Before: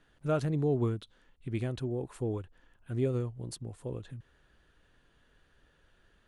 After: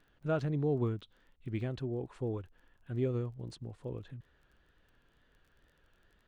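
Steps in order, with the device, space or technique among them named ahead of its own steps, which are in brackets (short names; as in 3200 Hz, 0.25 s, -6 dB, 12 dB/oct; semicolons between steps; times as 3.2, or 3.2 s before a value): lo-fi chain (LPF 4600 Hz 12 dB/oct; wow and flutter; crackle 22/s -53 dBFS); gain -2.5 dB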